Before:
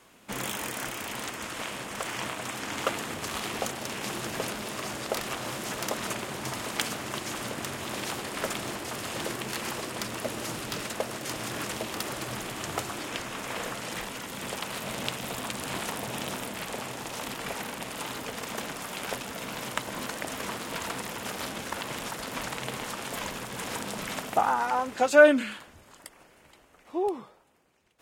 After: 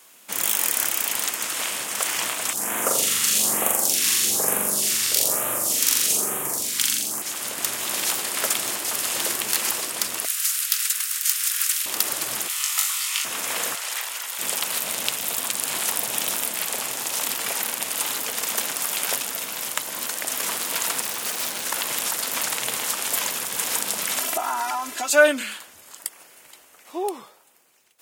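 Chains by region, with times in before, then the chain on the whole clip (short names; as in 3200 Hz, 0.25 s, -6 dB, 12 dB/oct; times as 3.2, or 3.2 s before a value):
2.53–7.22 flutter echo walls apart 7.3 m, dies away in 1.5 s + phaser stages 2, 1.1 Hz, lowest notch 610–4500 Hz
10.25–11.86 steep high-pass 1300 Hz + high shelf 7600 Hz +6 dB
12.48–13.25 HPF 1200 Hz 24 dB/oct + notch 1600 Hz, Q 5.8 + flutter echo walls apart 3.5 m, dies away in 0.33 s
13.75–14.39 HPF 790 Hz + bell 13000 Hz -4 dB 2.4 oct
21.01–21.65 hard clip -32 dBFS + Doppler distortion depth 0.41 ms
24.2–25.13 comb 3 ms, depth 91% + compressor 2.5:1, threshold -28 dBFS
whole clip: RIAA curve recording; AGC gain up to 4 dB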